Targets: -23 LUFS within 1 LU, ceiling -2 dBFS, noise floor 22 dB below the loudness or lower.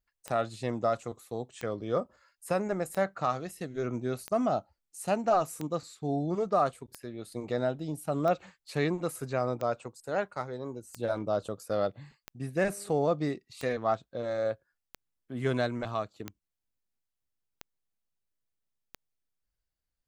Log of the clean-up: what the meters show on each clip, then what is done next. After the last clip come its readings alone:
clicks found 15; loudness -32.0 LUFS; peak level -14.5 dBFS; loudness target -23.0 LUFS
-> de-click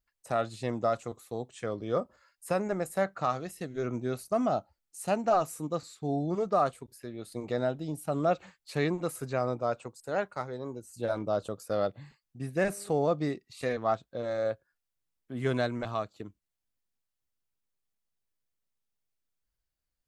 clicks found 0; loudness -32.0 LUFS; peak level -14.5 dBFS; loudness target -23.0 LUFS
-> trim +9 dB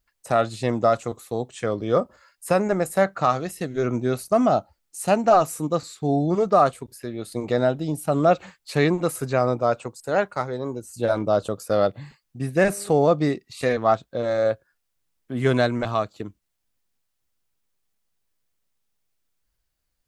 loudness -23.0 LUFS; peak level -5.5 dBFS; noise floor -76 dBFS

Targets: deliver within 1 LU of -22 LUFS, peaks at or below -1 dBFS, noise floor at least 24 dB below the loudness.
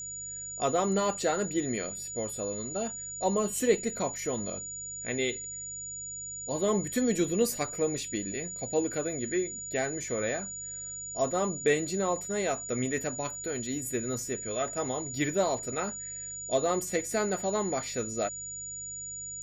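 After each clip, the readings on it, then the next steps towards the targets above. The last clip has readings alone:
hum 50 Hz; highest harmonic 150 Hz; hum level -53 dBFS; steady tone 6.9 kHz; tone level -37 dBFS; loudness -31.0 LUFS; peak level -12.0 dBFS; loudness target -22.0 LUFS
-> de-hum 50 Hz, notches 3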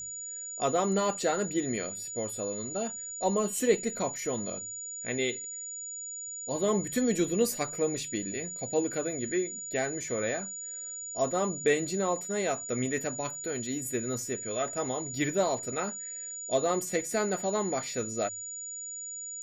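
hum not found; steady tone 6.9 kHz; tone level -37 dBFS
-> band-stop 6.9 kHz, Q 30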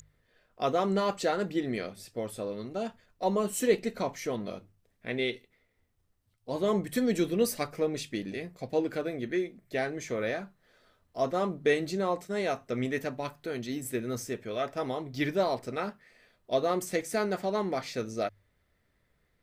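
steady tone not found; loudness -31.5 LUFS; peak level -12.5 dBFS; loudness target -22.0 LUFS
-> trim +9.5 dB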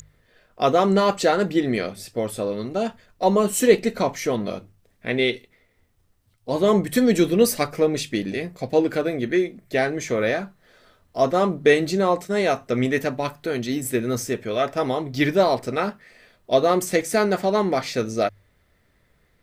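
loudness -22.0 LUFS; peak level -3.0 dBFS; noise floor -64 dBFS

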